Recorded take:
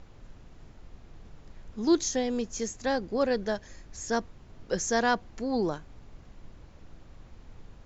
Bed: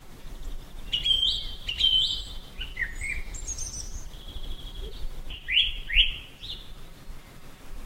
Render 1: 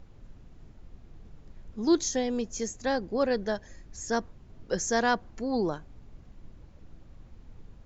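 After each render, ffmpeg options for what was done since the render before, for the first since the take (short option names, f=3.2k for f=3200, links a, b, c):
-af "afftdn=nr=6:nf=-52"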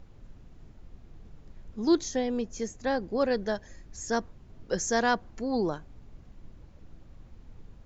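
-filter_complex "[0:a]asettb=1/sr,asplit=3[a][b][c];[a]atrim=end=1.954[d];[b]atrim=start=1.95:end=3,asetpts=PTS-STARTPTS,afade=t=in:d=0.004:c=qsin,afade=t=out:st=1.046:d=0.004:c=qsin,highshelf=f=5.7k:g=-11[e];[c]atrim=start=2.996[f];[d][e]acrossfade=d=0.004:c1=hsin:c2=qsin[g];[g][f]acrossfade=d=0.004:c1=qsin:c2=hsin"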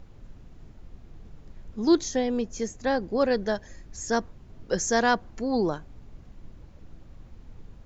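-af "volume=3dB"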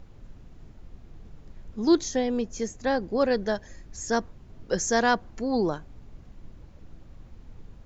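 -af anull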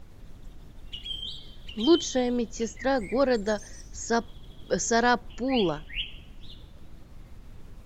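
-filter_complex "[1:a]volume=-12.5dB[a];[0:a][a]amix=inputs=2:normalize=0"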